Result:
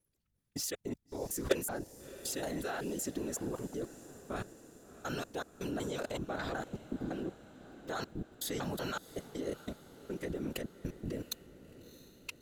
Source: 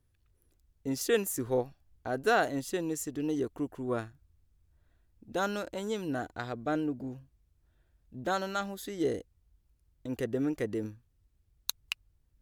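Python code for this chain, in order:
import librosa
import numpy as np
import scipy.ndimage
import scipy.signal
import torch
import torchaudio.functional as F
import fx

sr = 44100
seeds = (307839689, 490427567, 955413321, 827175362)

y = fx.block_reorder(x, sr, ms=187.0, group=3)
y = scipy.signal.sosfilt(scipy.signal.butter(4, 40.0, 'highpass', fs=sr, output='sos'), y)
y = fx.high_shelf(y, sr, hz=2200.0, db=4.5)
y = fx.level_steps(y, sr, step_db=22)
y = np.clip(y, -10.0 ** (-26.5 / 20.0), 10.0 ** (-26.5 / 20.0))
y = fx.whisperise(y, sr, seeds[0])
y = fx.echo_diffused(y, sr, ms=670, feedback_pct=60, wet_db=-16)
y = y * 10.0 ** (6.5 / 20.0)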